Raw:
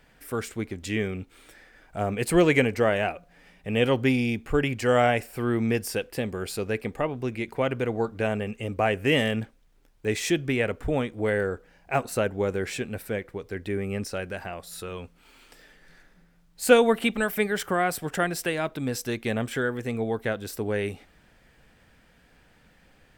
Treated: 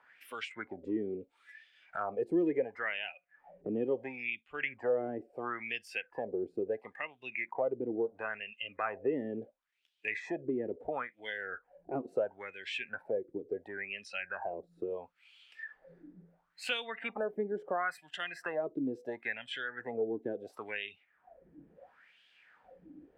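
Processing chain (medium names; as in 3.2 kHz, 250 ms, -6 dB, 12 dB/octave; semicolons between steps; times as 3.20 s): wah-wah 0.73 Hz 310–3200 Hz, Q 4.4; spectral noise reduction 16 dB; three bands compressed up and down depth 70%; trim +1.5 dB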